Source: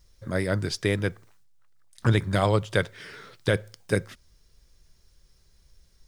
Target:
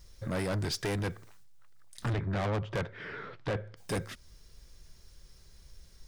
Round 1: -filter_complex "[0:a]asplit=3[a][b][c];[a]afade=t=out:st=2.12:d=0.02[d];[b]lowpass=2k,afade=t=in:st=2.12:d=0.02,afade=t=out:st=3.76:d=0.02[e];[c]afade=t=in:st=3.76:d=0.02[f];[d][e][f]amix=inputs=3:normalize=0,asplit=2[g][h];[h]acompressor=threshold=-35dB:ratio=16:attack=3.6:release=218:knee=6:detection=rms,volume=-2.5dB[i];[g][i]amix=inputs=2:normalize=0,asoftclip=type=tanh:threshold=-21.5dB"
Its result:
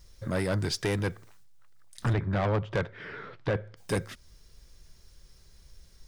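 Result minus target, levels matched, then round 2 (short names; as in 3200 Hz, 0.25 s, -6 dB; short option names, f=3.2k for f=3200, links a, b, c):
soft clip: distortion -4 dB
-filter_complex "[0:a]asplit=3[a][b][c];[a]afade=t=out:st=2.12:d=0.02[d];[b]lowpass=2k,afade=t=in:st=2.12:d=0.02,afade=t=out:st=3.76:d=0.02[e];[c]afade=t=in:st=3.76:d=0.02[f];[d][e][f]amix=inputs=3:normalize=0,asplit=2[g][h];[h]acompressor=threshold=-35dB:ratio=16:attack=3.6:release=218:knee=6:detection=rms,volume=-2.5dB[i];[g][i]amix=inputs=2:normalize=0,asoftclip=type=tanh:threshold=-28dB"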